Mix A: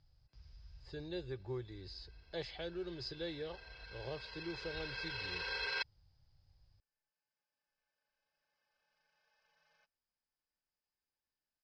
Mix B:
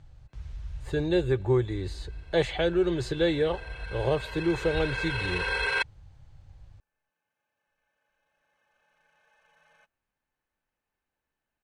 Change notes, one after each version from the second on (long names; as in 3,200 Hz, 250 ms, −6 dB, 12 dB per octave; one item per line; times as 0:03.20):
speech +5.0 dB
master: remove transistor ladder low-pass 5,100 Hz, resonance 90%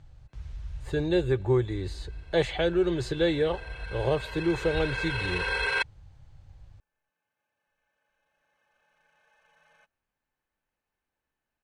nothing changed